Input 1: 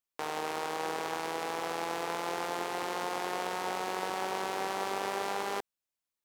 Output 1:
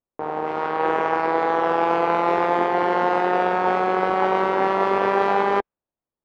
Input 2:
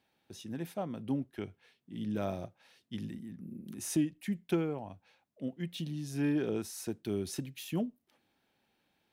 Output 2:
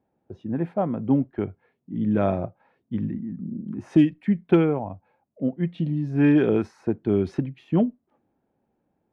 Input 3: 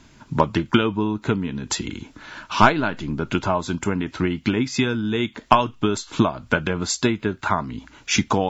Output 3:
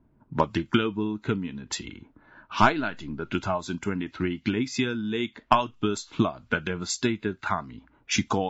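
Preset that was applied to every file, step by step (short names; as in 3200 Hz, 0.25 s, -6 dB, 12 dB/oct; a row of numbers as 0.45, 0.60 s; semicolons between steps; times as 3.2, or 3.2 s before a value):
spectral noise reduction 6 dB; low-pass opened by the level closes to 690 Hz, open at -20.5 dBFS; normalise peaks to -6 dBFS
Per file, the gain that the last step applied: +17.0, +13.0, -5.0 dB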